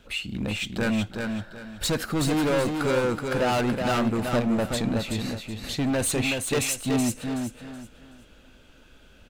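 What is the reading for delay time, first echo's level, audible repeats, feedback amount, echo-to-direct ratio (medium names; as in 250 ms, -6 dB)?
375 ms, -5.0 dB, 3, 28%, -4.5 dB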